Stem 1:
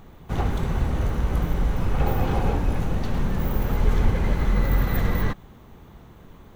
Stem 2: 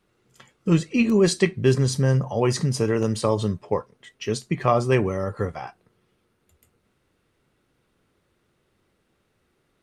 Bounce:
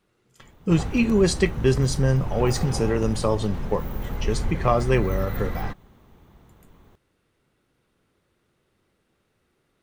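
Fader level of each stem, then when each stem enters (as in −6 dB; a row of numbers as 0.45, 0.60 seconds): −6.5, −1.0 decibels; 0.40, 0.00 seconds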